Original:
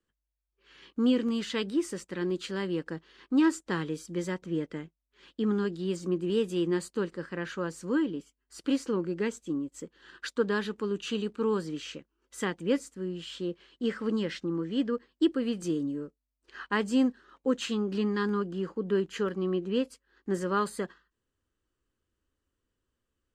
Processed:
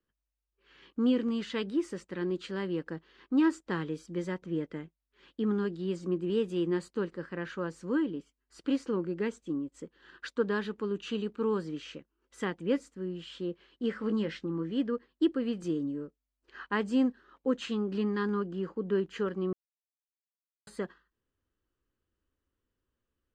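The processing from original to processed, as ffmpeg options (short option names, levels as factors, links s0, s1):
-filter_complex "[0:a]asettb=1/sr,asplit=3[s0][s1][s2];[s0]atrim=end=13.934[s3];[s1]atrim=start=13.93:end=14.72,asetpts=PTS-STARTPTS,afade=t=in:d=0.004:c=qsin,afade=t=out:st=0.786:d=0.004:c=qsin,asplit=2[s4][s5];[s5]adelay=19,volume=0.316[s6];[s4][s6]amix=inputs=2:normalize=0,atrim=end_sample=34839[s7];[s2]atrim=start=14.716[s8];[s3][s7]acrossfade=d=0.004:c1=hsin:c2=qsin[s9];[s9][s8]acrossfade=d=0.004:c1=qsin:c2=hsin,asplit=3[s10][s11][s12];[s10]atrim=end=19.53,asetpts=PTS-STARTPTS,afade=t=out:st=19.526:d=0.004:c=hsin[s13];[s11]atrim=start=19.53:end=20.67,asetpts=PTS-STARTPTS,volume=0[s14];[s12]atrim=start=20.67,asetpts=PTS-STARTPTS,afade=t=in:d=0.004:c=hsin[s15];[s13][s14][s15]concat=n=3:v=0:a=1,aemphasis=mode=reproduction:type=50fm,volume=0.794"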